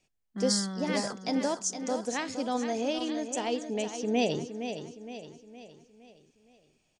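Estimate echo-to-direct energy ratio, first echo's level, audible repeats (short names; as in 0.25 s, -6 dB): -8.0 dB, -9.0 dB, 4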